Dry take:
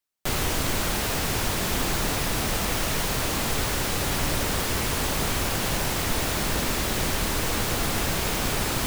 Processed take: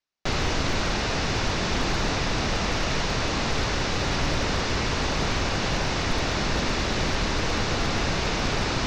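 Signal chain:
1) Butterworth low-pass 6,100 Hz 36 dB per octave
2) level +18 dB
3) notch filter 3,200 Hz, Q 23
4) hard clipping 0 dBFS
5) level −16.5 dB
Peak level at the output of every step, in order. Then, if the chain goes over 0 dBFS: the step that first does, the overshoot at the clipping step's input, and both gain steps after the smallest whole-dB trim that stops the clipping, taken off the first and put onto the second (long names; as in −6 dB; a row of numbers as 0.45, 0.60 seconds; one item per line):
−13.5, +4.5, +5.0, 0.0, −16.5 dBFS
step 2, 5.0 dB
step 2 +13 dB, step 5 −11.5 dB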